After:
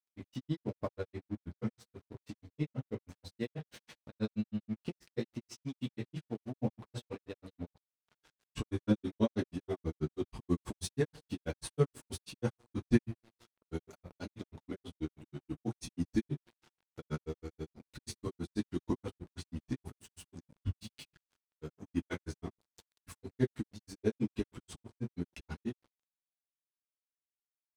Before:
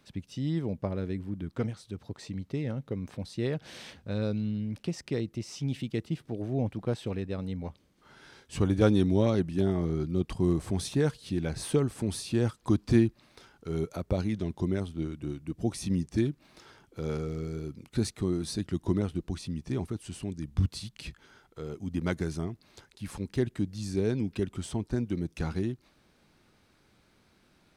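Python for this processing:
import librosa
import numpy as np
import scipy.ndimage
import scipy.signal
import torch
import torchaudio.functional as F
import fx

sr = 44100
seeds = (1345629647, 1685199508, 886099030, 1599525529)

y = fx.rev_double_slope(x, sr, seeds[0], early_s=0.23, late_s=1.6, knee_db=-28, drr_db=-2.0)
y = np.sign(y) * np.maximum(np.abs(y) - 10.0 ** (-47.5 / 20.0), 0.0)
y = fx.granulator(y, sr, seeds[1], grain_ms=88.0, per_s=6.2, spray_ms=12.0, spread_st=0)
y = F.gain(torch.from_numpy(y), -3.0).numpy()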